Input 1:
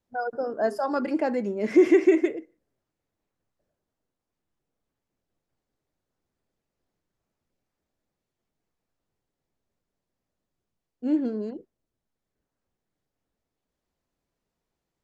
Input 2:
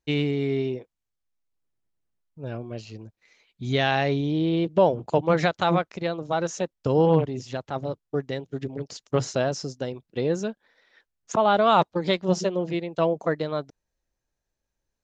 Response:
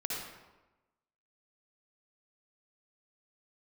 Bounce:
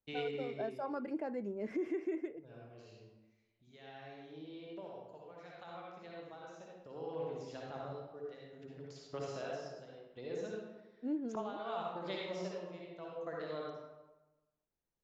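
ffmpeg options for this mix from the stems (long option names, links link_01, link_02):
-filter_complex "[0:a]highshelf=frequency=3100:gain=-10,volume=-11dB,asplit=2[link_01][link_02];[1:a]acrossover=split=360|4800[link_03][link_04][link_05];[link_03]acompressor=threshold=-37dB:ratio=4[link_06];[link_04]acompressor=threshold=-21dB:ratio=4[link_07];[link_05]acompressor=threshold=-49dB:ratio=4[link_08];[link_06][link_07][link_08]amix=inputs=3:normalize=0,tremolo=f=0.66:d=0.63,volume=-2.5dB,afade=type=out:start_time=2.45:duration=0.55:silence=0.375837,afade=type=in:start_time=6.43:duration=0.61:silence=0.398107,asplit=2[link_09][link_10];[link_10]volume=-4dB[link_11];[link_02]apad=whole_len=663139[link_12];[link_09][link_12]sidechaingate=range=-33dB:threshold=-41dB:ratio=16:detection=peak[link_13];[2:a]atrim=start_sample=2205[link_14];[link_11][link_14]afir=irnorm=-1:irlink=0[link_15];[link_01][link_13][link_15]amix=inputs=3:normalize=0,alimiter=level_in=5dB:limit=-24dB:level=0:latency=1:release=266,volume=-5dB"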